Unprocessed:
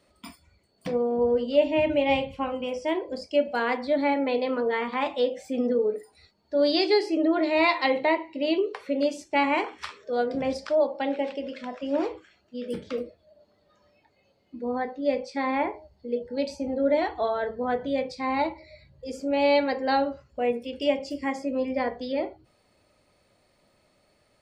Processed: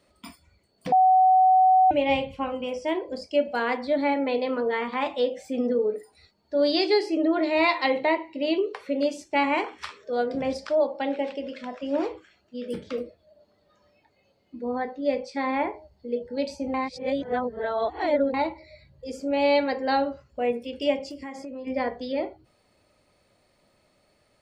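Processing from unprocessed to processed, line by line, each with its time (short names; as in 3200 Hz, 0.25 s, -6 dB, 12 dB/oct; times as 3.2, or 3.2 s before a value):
0.92–1.91 bleep 750 Hz -14 dBFS
16.74–18.34 reverse
21.07–21.67 compressor, threshold -34 dBFS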